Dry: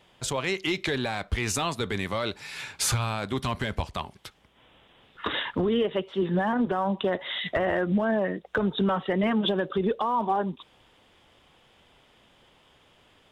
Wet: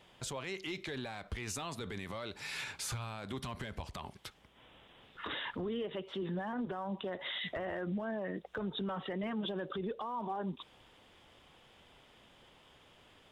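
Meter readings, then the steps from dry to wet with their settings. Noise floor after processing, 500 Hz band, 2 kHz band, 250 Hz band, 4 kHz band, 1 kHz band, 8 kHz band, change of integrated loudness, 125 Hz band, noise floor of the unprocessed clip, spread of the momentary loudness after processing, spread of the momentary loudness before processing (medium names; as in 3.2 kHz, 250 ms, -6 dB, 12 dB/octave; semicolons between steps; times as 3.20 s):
-63 dBFS, -12.5 dB, -11.0 dB, -12.0 dB, -10.0 dB, -13.0 dB, -12.0 dB, -12.0 dB, -12.0 dB, -61 dBFS, 9 LU, 7 LU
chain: compression, threshold -28 dBFS, peak gain reduction 8 dB; peak limiter -28.5 dBFS, peak gain reduction 11 dB; trim -2 dB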